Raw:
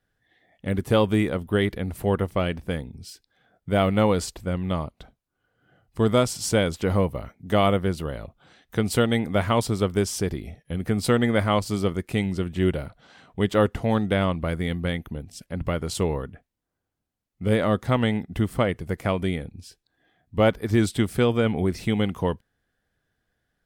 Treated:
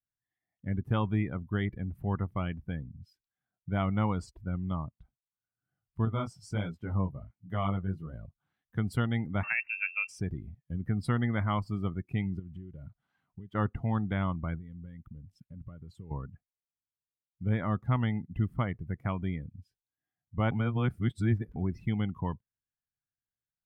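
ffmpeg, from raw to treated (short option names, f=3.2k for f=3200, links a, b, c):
-filter_complex "[0:a]asettb=1/sr,asplit=3[a][b][c];[a]atrim=end=6.054[d];[b]atrim=start=6.05:end=8.13,asetpts=PTS-STARTPTS,afade=t=in:d=0.004:c=qsin,afade=t=out:st=2.076:d=0.004:c=qsin,flanger=delay=17:depth=4.7:speed=1.4[e];[c]atrim=start=8.126[f];[d][e]acrossfade=d=0.004:c1=hsin:c2=qsin[g];[g][f]acrossfade=d=0.004:c1=qsin:c2=hsin,asettb=1/sr,asplit=3[h][i][j];[h]atrim=end=9.434[k];[i]atrim=start=9.43:end=10.09,asetpts=PTS-STARTPTS,afade=t=in:d=0.004:c=qsin,afade=t=out:st=0.656:d=0.004:c=qsin,lowpass=f=2.4k:t=q:w=0.5098,lowpass=f=2.4k:t=q:w=0.6013,lowpass=f=2.4k:t=q:w=0.9,lowpass=f=2.4k:t=q:w=2.563,afreqshift=-2800[l];[j]atrim=start=10.086[m];[k][l]acrossfade=d=0.004:c1=hsin:c2=qsin[n];[n][m]acrossfade=d=0.004:c1=qsin:c2=hsin,asettb=1/sr,asplit=3[o][p][q];[o]atrim=end=12.394[r];[p]atrim=start=12.39:end=13.55,asetpts=PTS-STARTPTS,afade=t=in:d=0.004:c=qsin,afade=t=out:st=1.156:d=0.004:c=qsin,acompressor=threshold=-32dB:ratio=16:attack=3.2:release=140:knee=1:detection=peak[s];[q]atrim=start=13.546[t];[r][s]acrossfade=d=0.004:c1=hsin:c2=qsin[u];[u][t]acrossfade=d=0.004:c1=qsin:c2=hsin,asettb=1/sr,asplit=3[v][w][x];[v]atrim=end=14.584[y];[w]atrim=start=14.58:end=16.11,asetpts=PTS-STARTPTS,afade=t=in:d=0.004:c=qsin,afade=t=out:st=1.526:d=0.004:c=qsin,acompressor=threshold=-35dB:ratio=5:attack=3.2:release=140:knee=1:detection=peak[z];[x]atrim=start=16.106[aa];[y][z]acrossfade=d=0.004:c1=hsin:c2=qsin[ab];[ab][aa]acrossfade=d=0.004:c1=qsin:c2=hsin,asplit=3[ac][ad][ae];[ac]atrim=end=20.512[af];[ad]atrim=start=20.508:end=21.562,asetpts=PTS-STARTPTS,areverse[ag];[ae]atrim=start=21.558[ah];[af][ag]acrossfade=d=0.004:c1=hsin:c2=hsin[ai];[ai][ah]acrossfade=d=0.004:c1=hsin:c2=hsin,afftdn=nr=19:nf=-34,equalizer=f=125:t=o:w=1:g=6,equalizer=f=500:t=o:w=1:g=-11,equalizer=f=1k:t=o:w=1:g=4,equalizer=f=4k:t=o:w=1:g=-6,equalizer=f=8k:t=o:w=1:g=-9,volume=-8dB"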